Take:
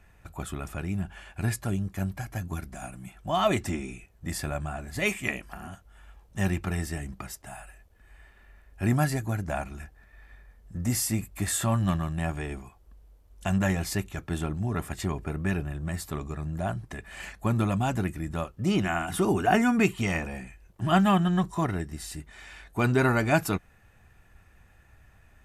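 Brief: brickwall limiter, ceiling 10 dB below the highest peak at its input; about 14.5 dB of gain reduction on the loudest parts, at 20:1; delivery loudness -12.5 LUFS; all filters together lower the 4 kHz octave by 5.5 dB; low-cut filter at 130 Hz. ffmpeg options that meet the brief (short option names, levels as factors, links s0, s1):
-af "highpass=130,equalizer=f=4000:t=o:g=-8,acompressor=threshold=0.0251:ratio=20,volume=23.7,alimiter=limit=1:level=0:latency=1"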